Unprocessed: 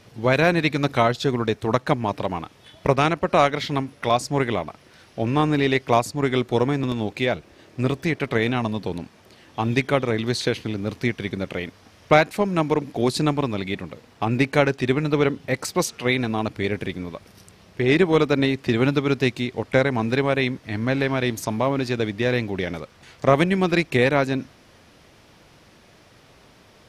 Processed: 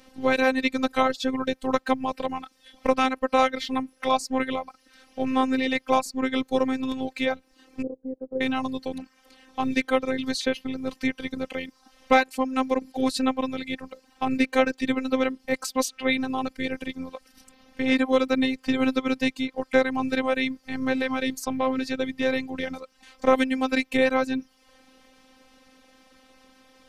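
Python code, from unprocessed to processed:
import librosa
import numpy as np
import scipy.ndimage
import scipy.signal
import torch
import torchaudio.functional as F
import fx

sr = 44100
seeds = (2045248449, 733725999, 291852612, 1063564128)

y = fx.ladder_lowpass(x, sr, hz=530.0, resonance_pct=55, at=(7.82, 8.41))
y = fx.dereverb_blind(y, sr, rt60_s=0.58)
y = fx.robotise(y, sr, hz=261.0)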